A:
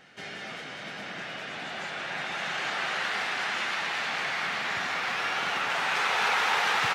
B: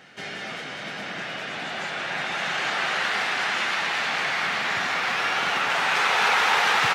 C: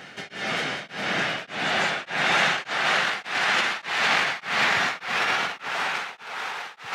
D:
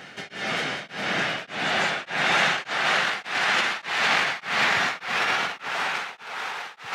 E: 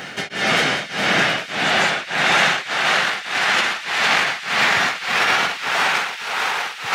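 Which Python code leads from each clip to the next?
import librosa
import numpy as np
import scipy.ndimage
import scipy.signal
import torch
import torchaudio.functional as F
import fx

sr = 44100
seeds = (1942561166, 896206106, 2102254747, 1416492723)

y1 = scipy.signal.sosfilt(scipy.signal.butter(2, 70.0, 'highpass', fs=sr, output='sos'), x)
y1 = F.gain(torch.from_numpy(y1), 5.0).numpy()
y2 = fx.over_compress(y1, sr, threshold_db=-27.0, ratio=-0.5)
y2 = y2 + 10.0 ** (-11.0 / 20.0) * np.pad(y2, (int(551 * sr / 1000.0), 0))[:len(y2)]
y2 = y2 * np.abs(np.cos(np.pi * 1.7 * np.arange(len(y2)) / sr))
y2 = F.gain(torch.from_numpy(y2), 5.0).numpy()
y3 = y2
y4 = fx.high_shelf(y3, sr, hz=9100.0, db=6.5)
y4 = fx.echo_wet_highpass(y4, sr, ms=456, feedback_pct=52, hz=2200.0, wet_db=-11.0)
y4 = fx.rider(y4, sr, range_db=5, speed_s=2.0)
y4 = F.gain(torch.from_numpy(y4), 5.5).numpy()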